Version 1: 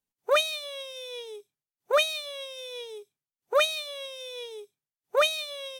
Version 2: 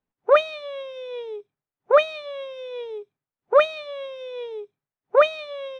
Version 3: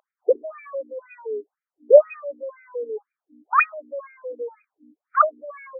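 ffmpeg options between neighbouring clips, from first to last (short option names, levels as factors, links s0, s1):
-af "lowpass=1600,volume=2.51"
-af "aeval=exprs='val(0)+0.00891*(sin(2*PI*60*n/s)+sin(2*PI*2*60*n/s)/2+sin(2*PI*3*60*n/s)/3+sin(2*PI*4*60*n/s)/4+sin(2*PI*5*60*n/s)/5)':c=same,asubboost=boost=5.5:cutoff=130,afftfilt=real='re*between(b*sr/1024,320*pow(1800/320,0.5+0.5*sin(2*PI*2*pts/sr))/1.41,320*pow(1800/320,0.5+0.5*sin(2*PI*2*pts/sr))*1.41)':imag='im*between(b*sr/1024,320*pow(1800/320,0.5+0.5*sin(2*PI*2*pts/sr))/1.41,320*pow(1800/320,0.5+0.5*sin(2*PI*2*pts/sr))*1.41)':win_size=1024:overlap=0.75,volume=2.24"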